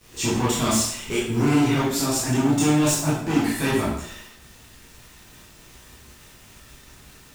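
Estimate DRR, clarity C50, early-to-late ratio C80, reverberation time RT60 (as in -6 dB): -8.0 dB, 1.0 dB, 5.0 dB, 0.70 s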